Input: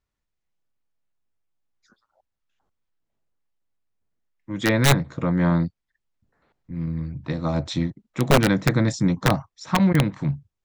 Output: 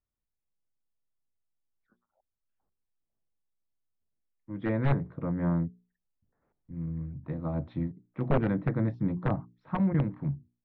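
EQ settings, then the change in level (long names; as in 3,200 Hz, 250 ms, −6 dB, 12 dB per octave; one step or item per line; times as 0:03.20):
high-frequency loss of the air 440 metres
head-to-tape spacing loss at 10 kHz 33 dB
mains-hum notches 60/120/180/240/300/360/420 Hz
−6.0 dB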